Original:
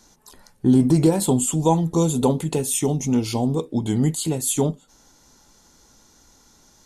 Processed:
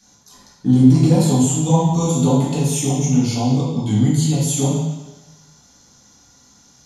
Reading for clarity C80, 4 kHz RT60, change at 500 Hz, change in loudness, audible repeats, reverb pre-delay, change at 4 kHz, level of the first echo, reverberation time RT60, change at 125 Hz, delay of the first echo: 3.5 dB, 1.1 s, -0.5 dB, +4.0 dB, no echo, 3 ms, +4.0 dB, no echo, 1.1 s, +7.0 dB, no echo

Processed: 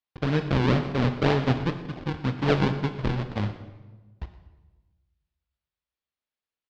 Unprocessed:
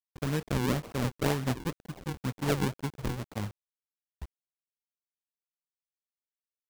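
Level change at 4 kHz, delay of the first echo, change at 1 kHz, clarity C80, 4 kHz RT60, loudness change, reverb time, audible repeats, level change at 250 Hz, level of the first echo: +5.0 dB, 119 ms, +7.0 dB, 11.0 dB, 0.90 s, +6.5 dB, 1.2 s, 1, +6.5 dB, -18.0 dB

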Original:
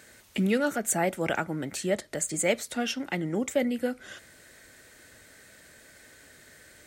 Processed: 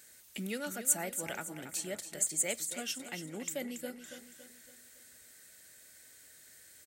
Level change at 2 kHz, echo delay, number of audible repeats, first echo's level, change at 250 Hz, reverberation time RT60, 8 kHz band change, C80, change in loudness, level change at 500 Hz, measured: -9.5 dB, 280 ms, 4, -10.5 dB, -13.5 dB, no reverb, 0.0 dB, no reverb, -6.5 dB, -13.0 dB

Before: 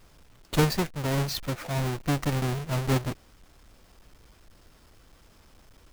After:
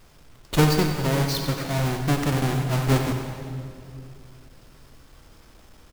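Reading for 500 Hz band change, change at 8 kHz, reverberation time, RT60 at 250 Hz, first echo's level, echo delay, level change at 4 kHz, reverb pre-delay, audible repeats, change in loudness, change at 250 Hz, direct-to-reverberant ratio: +4.5 dB, +4.5 dB, 2.6 s, 3.2 s, -9.5 dB, 93 ms, +4.5 dB, 16 ms, 1, +4.5 dB, +5.5 dB, 3.5 dB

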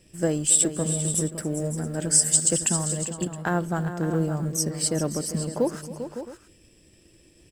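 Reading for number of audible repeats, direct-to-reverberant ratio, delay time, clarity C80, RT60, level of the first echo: 4, no reverb, 272 ms, no reverb, no reverb, -18.5 dB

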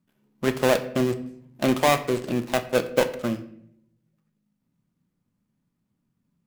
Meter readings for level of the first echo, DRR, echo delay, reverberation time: no echo, 8.5 dB, no echo, 0.65 s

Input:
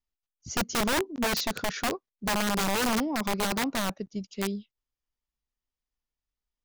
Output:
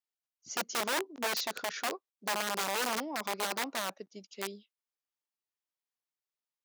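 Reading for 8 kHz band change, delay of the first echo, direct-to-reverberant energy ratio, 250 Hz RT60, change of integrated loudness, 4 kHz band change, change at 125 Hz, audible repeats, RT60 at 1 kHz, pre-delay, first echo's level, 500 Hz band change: -4.0 dB, no echo, no reverb, no reverb, -5.0 dB, -4.0 dB, under -15 dB, no echo, no reverb, no reverb, no echo, -6.0 dB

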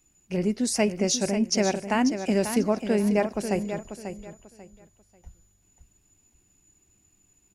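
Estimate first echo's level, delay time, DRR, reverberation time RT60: -9.0 dB, 541 ms, no reverb, no reverb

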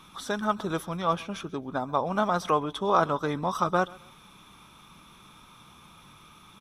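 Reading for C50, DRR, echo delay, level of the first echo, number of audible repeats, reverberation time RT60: no reverb, no reverb, 133 ms, -23.0 dB, 2, no reverb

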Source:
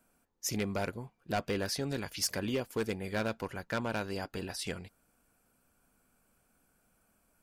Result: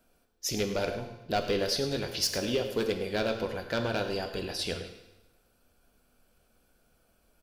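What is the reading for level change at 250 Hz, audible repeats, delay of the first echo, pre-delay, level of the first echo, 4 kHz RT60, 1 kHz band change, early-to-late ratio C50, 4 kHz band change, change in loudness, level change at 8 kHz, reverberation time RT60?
+2.0 dB, 1, 104 ms, 9 ms, -12.5 dB, 0.95 s, +3.0 dB, 7.5 dB, +7.0 dB, +4.5 dB, +2.0 dB, 1.0 s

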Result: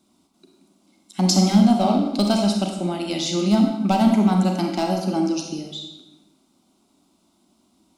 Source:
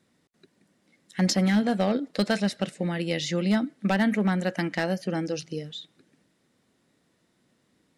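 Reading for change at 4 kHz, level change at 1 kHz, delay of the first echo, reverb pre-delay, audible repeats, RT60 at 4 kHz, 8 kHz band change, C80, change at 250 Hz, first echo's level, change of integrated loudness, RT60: +6.5 dB, +9.0 dB, no echo, 31 ms, no echo, 0.80 s, +8.0 dB, 6.0 dB, +7.5 dB, no echo, +6.5 dB, 1.0 s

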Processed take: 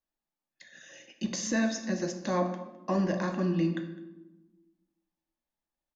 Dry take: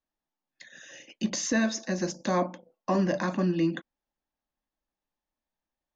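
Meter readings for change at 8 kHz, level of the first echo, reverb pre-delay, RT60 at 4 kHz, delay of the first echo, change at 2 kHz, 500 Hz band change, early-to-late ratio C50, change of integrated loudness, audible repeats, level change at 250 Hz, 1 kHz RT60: no reading, -21.0 dB, 3 ms, 0.70 s, 208 ms, -3.0 dB, -2.0 dB, 8.5 dB, -2.0 dB, 1, -1.5 dB, 0.95 s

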